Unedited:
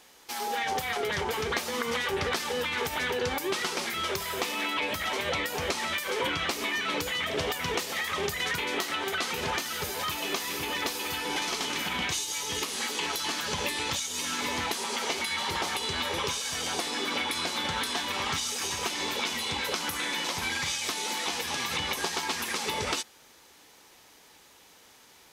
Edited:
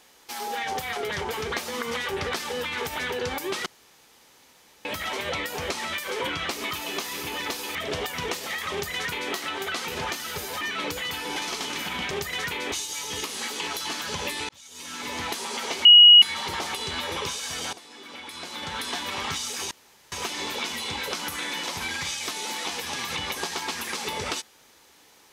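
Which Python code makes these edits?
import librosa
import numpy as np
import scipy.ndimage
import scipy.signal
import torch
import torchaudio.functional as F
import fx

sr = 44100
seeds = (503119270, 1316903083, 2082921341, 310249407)

y = fx.edit(x, sr, fx.room_tone_fill(start_s=3.66, length_s=1.19),
    fx.swap(start_s=6.71, length_s=0.5, other_s=10.07, other_length_s=1.04),
    fx.duplicate(start_s=8.18, length_s=0.61, to_s=12.11),
    fx.fade_in_span(start_s=13.88, length_s=0.78),
    fx.insert_tone(at_s=15.24, length_s=0.37, hz=2900.0, db=-7.5),
    fx.fade_in_from(start_s=16.75, length_s=1.18, curve='qua', floor_db=-15.5),
    fx.insert_room_tone(at_s=18.73, length_s=0.41), tone=tone)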